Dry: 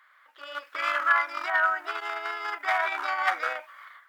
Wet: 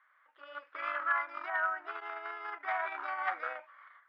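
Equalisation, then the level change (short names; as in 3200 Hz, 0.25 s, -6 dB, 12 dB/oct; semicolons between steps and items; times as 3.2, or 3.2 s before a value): LPF 2100 Hz 12 dB/oct; -7.5 dB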